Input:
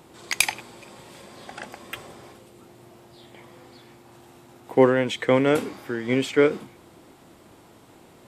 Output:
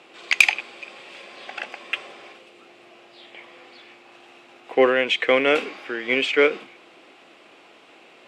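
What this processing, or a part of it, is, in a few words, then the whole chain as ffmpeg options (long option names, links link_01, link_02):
intercom: -af "highpass=420,lowpass=4900,equalizer=frequency=2600:width_type=o:width=0.59:gain=11,bandreject=frequency=920:width=8.4,asoftclip=type=tanh:threshold=-4dB,volume=3dB"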